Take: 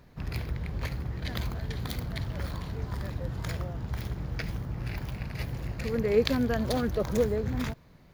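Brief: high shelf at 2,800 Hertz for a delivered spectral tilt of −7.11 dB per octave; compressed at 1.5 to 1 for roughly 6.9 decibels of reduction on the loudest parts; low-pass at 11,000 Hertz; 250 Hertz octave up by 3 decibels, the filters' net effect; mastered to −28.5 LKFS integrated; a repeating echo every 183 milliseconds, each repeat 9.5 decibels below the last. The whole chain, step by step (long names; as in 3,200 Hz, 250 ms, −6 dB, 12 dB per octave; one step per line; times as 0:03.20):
low-pass filter 11,000 Hz
parametric band 250 Hz +3.5 dB
high-shelf EQ 2,800 Hz −6.5 dB
downward compressor 1.5 to 1, threshold −37 dBFS
repeating echo 183 ms, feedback 33%, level −9.5 dB
level +6.5 dB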